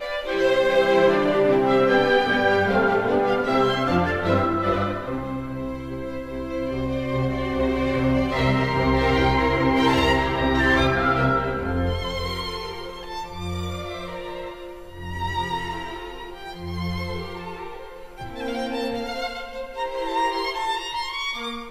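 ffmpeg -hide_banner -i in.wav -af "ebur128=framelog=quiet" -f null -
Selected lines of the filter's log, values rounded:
Integrated loudness:
  I:         -22.7 LUFS
  Threshold: -33.2 LUFS
Loudness range:
  LRA:        11.5 LU
  Threshold: -43.5 LUFS
  LRA low:   -31.0 LUFS
  LRA high:  -19.4 LUFS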